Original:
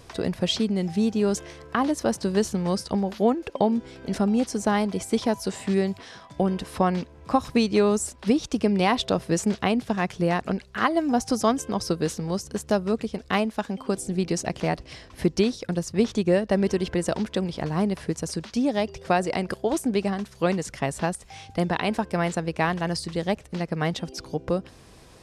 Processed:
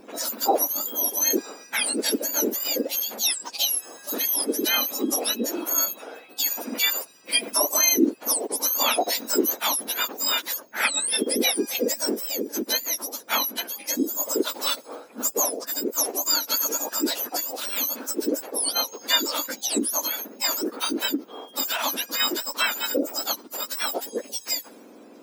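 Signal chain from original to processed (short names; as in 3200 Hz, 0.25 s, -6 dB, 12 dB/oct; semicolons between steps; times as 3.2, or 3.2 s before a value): spectrum mirrored in octaves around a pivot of 1600 Hz; mismatched tape noise reduction decoder only; gain +4.5 dB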